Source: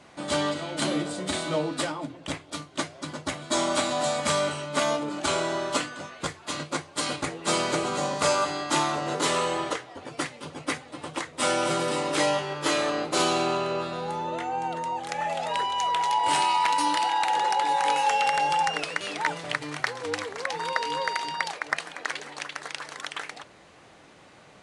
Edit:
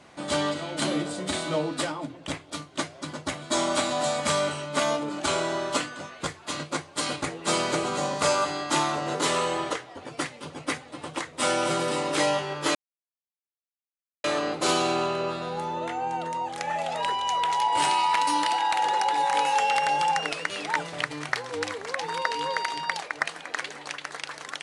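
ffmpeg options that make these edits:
ffmpeg -i in.wav -filter_complex "[0:a]asplit=2[link_01][link_02];[link_01]atrim=end=12.75,asetpts=PTS-STARTPTS,afade=type=out:start_time=12.746:duration=0.004:curve=hsin,apad=pad_dur=1.49[link_03];[link_02]atrim=start=12.75,asetpts=PTS-STARTPTS,afade=type=in:duration=0.004:curve=hsin[link_04];[link_03][link_04]concat=n=2:v=0:a=1" out.wav

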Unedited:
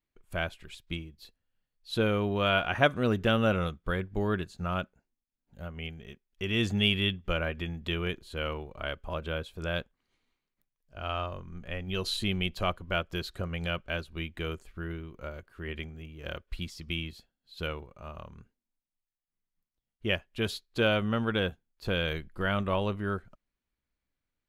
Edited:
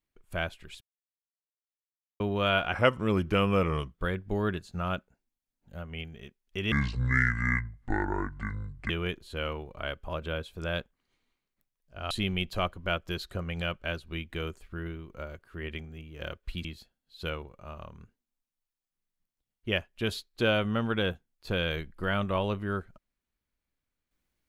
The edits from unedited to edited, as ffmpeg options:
ffmpeg -i in.wav -filter_complex "[0:a]asplit=9[link_01][link_02][link_03][link_04][link_05][link_06][link_07][link_08][link_09];[link_01]atrim=end=0.81,asetpts=PTS-STARTPTS,afade=type=out:start_time=0.806:duration=0.004:curve=hsin[link_10];[link_02]atrim=start=0.81:end=2.2,asetpts=PTS-STARTPTS,volume=0[link_11];[link_03]atrim=start=2.2:end=2.734,asetpts=PTS-STARTPTS,afade=type=in:duration=0.004:curve=hsin[link_12];[link_04]atrim=start=2.73:end=3.8,asetpts=PTS-STARTPTS,asetrate=38808,aresample=44100[link_13];[link_05]atrim=start=3.796:end=6.574[link_14];[link_06]atrim=start=6.57:end=7.9,asetpts=PTS-STARTPTS,asetrate=26901,aresample=44100,atrim=end_sample=96152,asetpts=PTS-STARTPTS[link_15];[link_07]atrim=start=7.896:end=11.112[link_16];[link_08]atrim=start=12.148:end=16.692[link_17];[link_09]atrim=start=17.018[link_18];[link_10][link_11][link_12]concat=n=3:v=0:a=1[link_19];[link_19][link_13]acrossfade=duration=0.004:curve1=hsin:curve2=hsin[link_20];[link_20][link_14]acrossfade=duration=0.004:curve1=hsin:curve2=hsin[link_21];[link_21][link_15]acrossfade=duration=0.004:curve1=hsin:curve2=hsin[link_22];[link_22][link_16]acrossfade=duration=0.004:curve1=hsin:curve2=hsin[link_23];[link_23][link_17]acrossfade=duration=0.004:curve1=hsin:curve2=hsin[link_24];[link_24][link_18]acrossfade=duration=0.004:curve1=hsin:curve2=hsin" out.wav

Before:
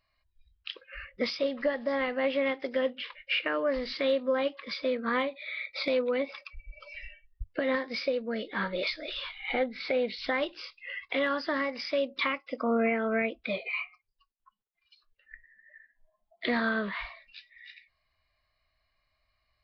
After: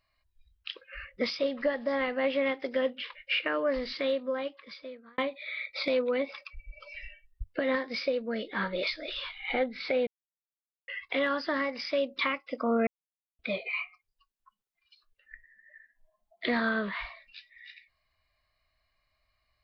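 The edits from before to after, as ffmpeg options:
ffmpeg -i in.wav -filter_complex "[0:a]asplit=6[link_01][link_02][link_03][link_04][link_05][link_06];[link_01]atrim=end=5.18,asetpts=PTS-STARTPTS,afade=type=out:start_time=3.78:duration=1.4[link_07];[link_02]atrim=start=5.18:end=10.07,asetpts=PTS-STARTPTS,afade=type=in:duration=0.004:curve=hsin,afade=type=out:start_time=4.886:duration=0.004:curve=hsin[link_08];[link_03]atrim=start=10.07:end=10.88,asetpts=PTS-STARTPTS,volume=0[link_09];[link_04]atrim=start=10.88:end=12.87,asetpts=PTS-STARTPTS,afade=type=in:duration=0.004:curve=hsin,afade=type=out:start_time=1.986:duration=0.004:curve=hsin[link_10];[link_05]atrim=start=12.87:end=13.39,asetpts=PTS-STARTPTS,volume=0[link_11];[link_06]atrim=start=13.39,asetpts=PTS-STARTPTS,afade=type=in:duration=0.004:curve=hsin[link_12];[link_07][link_08][link_09][link_10][link_11][link_12]concat=n=6:v=0:a=1" out.wav

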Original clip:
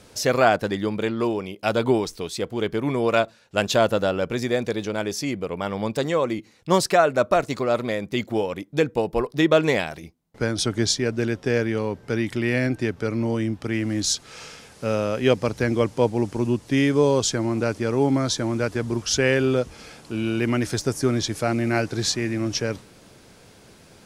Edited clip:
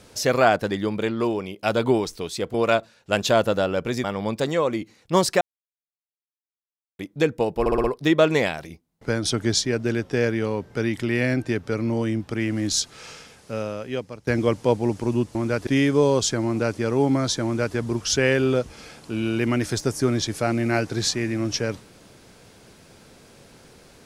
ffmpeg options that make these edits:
ffmpeg -i in.wav -filter_complex "[0:a]asplit=12[link_01][link_02][link_03][link_04][link_05][link_06][link_07][link_08][link_09][link_10][link_11][link_12];[link_01]atrim=end=2.542[link_13];[link_02]atrim=start=2.988:end=4.492[link_14];[link_03]atrim=start=5.608:end=6.98,asetpts=PTS-STARTPTS,afade=type=out:start_time=1.368:duration=0.004:curve=hsin[link_15];[link_04]atrim=start=6.98:end=8.56,asetpts=PTS-STARTPTS,volume=0[link_16];[link_05]atrim=start=8.56:end=9.232,asetpts=PTS-STARTPTS,afade=type=in:duration=0.004:curve=hsin[link_17];[link_06]atrim=start=9.168:end=9.232[link_18];[link_07]atrim=start=9.168:end=9.232[link_19];[link_08]atrim=start=9.168:end=9.232[link_20];[link_09]atrim=start=9.168:end=15.6,asetpts=PTS-STARTPTS,afade=type=out:start_time=5.092:duration=1.34:silence=0.112202[link_21];[link_10]atrim=start=15.6:end=16.682,asetpts=PTS-STARTPTS,afade=type=in:duration=0.004:curve=hsin:silence=0.112202[link_22];[link_11]atrim=start=18.448:end=18.772[link_23];[link_12]atrim=start=16.678[link_24];[link_13][link_14]acrossfade=duration=0.004:curve1=hsin:curve2=hsin[link_25];[link_15][link_16][link_17]concat=n=3:v=0:a=1[link_26];[link_25][link_26]acrossfade=duration=0.004:curve1=hsin:curve2=hsin[link_27];[link_27][link_18]acrossfade=duration=0.004:curve1=hsin:curve2=hsin[link_28];[link_28][link_19]acrossfade=duration=0.004:curve1=hsin:curve2=hsin[link_29];[link_29][link_20]acrossfade=duration=0.004:curve1=hsin:curve2=hsin[link_30];[link_21][link_22]concat=n=2:v=0:a=1[link_31];[link_30][link_31]acrossfade=duration=0.004:curve1=hsin:curve2=hsin[link_32];[link_32][link_23]acrossfade=duration=0.004:curve1=hsin:curve2=hsin[link_33];[link_33][link_24]acrossfade=duration=0.004:curve1=hsin:curve2=hsin" out.wav

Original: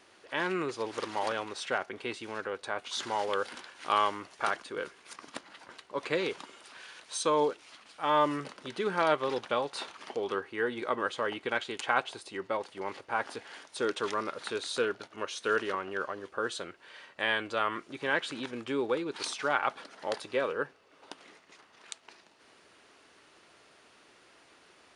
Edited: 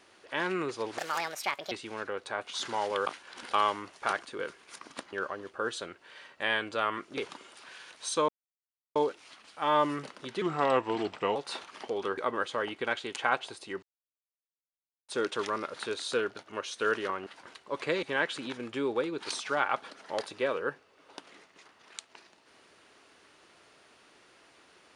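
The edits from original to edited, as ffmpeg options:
ffmpeg -i in.wav -filter_complex "[0:a]asplit=15[link_01][link_02][link_03][link_04][link_05][link_06][link_07][link_08][link_09][link_10][link_11][link_12][link_13][link_14][link_15];[link_01]atrim=end=0.984[link_16];[link_02]atrim=start=0.98:end=2.09,asetpts=PTS-STARTPTS,asetrate=66591,aresample=44100[link_17];[link_03]atrim=start=2.086:end=3.442[link_18];[link_04]atrim=start=3.438:end=3.912,asetpts=PTS-STARTPTS,areverse[link_19];[link_05]atrim=start=3.908:end=5.502[link_20];[link_06]atrim=start=15.908:end=17.962[link_21];[link_07]atrim=start=6.258:end=7.37,asetpts=PTS-STARTPTS,afade=type=out:start_time=1.108:duration=0.004:curve=hsin,apad=pad_dur=0.67[link_22];[link_08]atrim=start=7.37:end=8.834,asetpts=PTS-STARTPTS,afade=type=in:duration=0.004:curve=hsin[link_23];[link_09]atrim=start=8.83:end=9.62,asetpts=PTS-STARTPTS,asetrate=37044,aresample=44100[link_24];[link_10]atrim=start=9.616:end=10.442[link_25];[link_11]atrim=start=10.818:end=12.47,asetpts=PTS-STARTPTS,afade=type=out:start_time=1.648:duration=0.004:curve=hsin[link_26];[link_12]atrim=start=12.47:end=13.73,asetpts=PTS-STARTPTS,volume=0[link_27];[link_13]atrim=start=13.73:end=15.912,asetpts=PTS-STARTPTS,afade=type=in:duration=0.004:curve=hsin[link_28];[link_14]atrim=start=5.498:end=6.262[link_29];[link_15]atrim=start=17.958[link_30];[link_16][link_17]acrossfade=duration=0.004:curve1=hsin:curve2=hsin[link_31];[link_31][link_18]acrossfade=duration=0.004:curve1=hsin:curve2=hsin[link_32];[link_32][link_19]acrossfade=duration=0.004:curve1=hsin:curve2=hsin[link_33];[link_33][link_20]acrossfade=duration=0.004:curve1=hsin:curve2=hsin[link_34];[link_34][link_21]acrossfade=duration=0.004:curve1=hsin:curve2=hsin[link_35];[link_22][link_23]concat=n=2:v=0:a=1[link_36];[link_35][link_36]acrossfade=duration=0.004:curve1=hsin:curve2=hsin[link_37];[link_37][link_24]acrossfade=duration=0.004:curve1=hsin:curve2=hsin[link_38];[link_38][link_25]acrossfade=duration=0.004:curve1=hsin:curve2=hsin[link_39];[link_26][link_27][link_28]concat=n=3:v=0:a=1[link_40];[link_39][link_40]acrossfade=duration=0.004:curve1=hsin:curve2=hsin[link_41];[link_41][link_29]acrossfade=duration=0.004:curve1=hsin:curve2=hsin[link_42];[link_42][link_30]acrossfade=duration=0.004:curve1=hsin:curve2=hsin" out.wav

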